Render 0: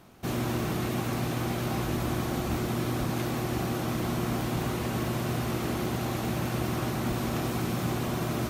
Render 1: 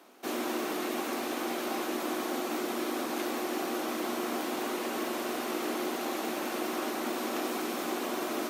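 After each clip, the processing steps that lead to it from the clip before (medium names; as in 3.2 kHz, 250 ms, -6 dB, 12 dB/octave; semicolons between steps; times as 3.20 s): steep high-pass 260 Hz 36 dB/octave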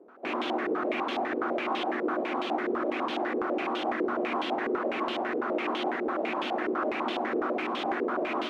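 step-sequenced low-pass 12 Hz 450–3200 Hz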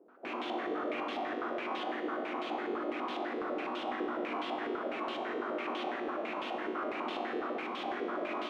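feedback comb 50 Hz, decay 1.9 s, harmonics all, mix 80%; trim +4.5 dB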